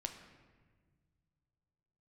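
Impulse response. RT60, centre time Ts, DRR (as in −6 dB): 1.6 s, 24 ms, 5.0 dB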